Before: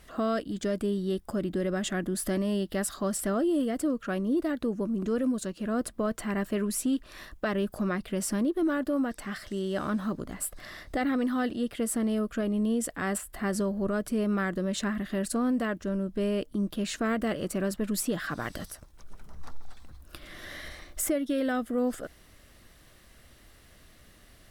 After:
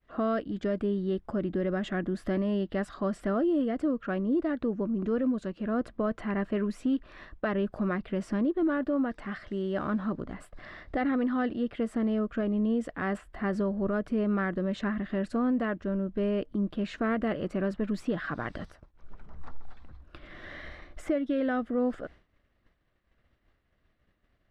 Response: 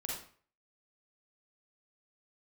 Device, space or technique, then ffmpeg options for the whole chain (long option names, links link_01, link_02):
hearing-loss simulation: -af "lowpass=2400,agate=range=-33dB:threshold=-45dB:ratio=3:detection=peak"